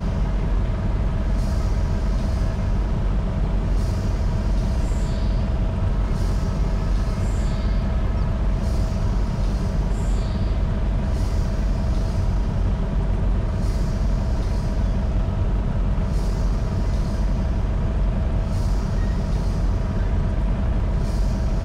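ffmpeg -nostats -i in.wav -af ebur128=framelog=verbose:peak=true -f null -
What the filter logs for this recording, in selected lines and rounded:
Integrated loudness:
  I:         -24.2 LUFS
  Threshold: -34.2 LUFS
Loudness range:
  LRA:         0.2 LU
  Threshold: -44.2 LUFS
  LRA low:   -24.2 LUFS
  LRA high:  -24.1 LUFS
True peak:
  Peak:      -12.7 dBFS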